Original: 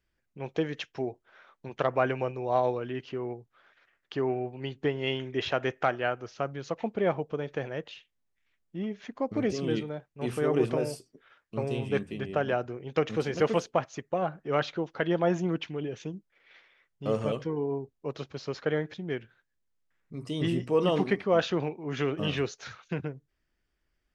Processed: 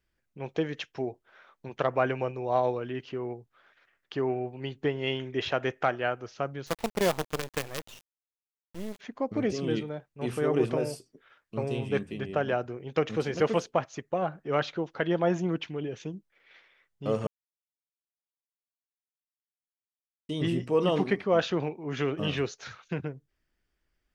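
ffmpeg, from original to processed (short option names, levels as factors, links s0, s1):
-filter_complex "[0:a]asplit=3[s0][s1][s2];[s0]afade=t=out:st=6.66:d=0.02[s3];[s1]acrusher=bits=5:dc=4:mix=0:aa=0.000001,afade=t=in:st=6.66:d=0.02,afade=t=out:st=8.99:d=0.02[s4];[s2]afade=t=in:st=8.99:d=0.02[s5];[s3][s4][s5]amix=inputs=3:normalize=0,asplit=3[s6][s7][s8];[s6]atrim=end=17.27,asetpts=PTS-STARTPTS,afade=t=out:st=17.266:d=0.004:c=hsin[s9];[s7]atrim=start=17.27:end=20.29,asetpts=PTS-STARTPTS,volume=0[s10];[s8]atrim=start=20.29,asetpts=PTS-STARTPTS,afade=t=in:d=0.004:c=hsin[s11];[s9][s10][s11]concat=n=3:v=0:a=1"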